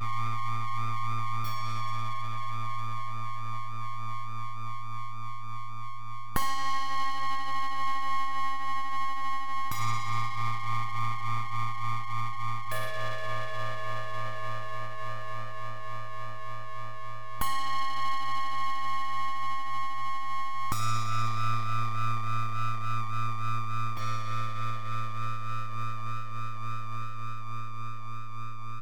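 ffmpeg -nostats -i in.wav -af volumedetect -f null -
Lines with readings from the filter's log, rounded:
mean_volume: -25.6 dB
max_volume: -9.2 dB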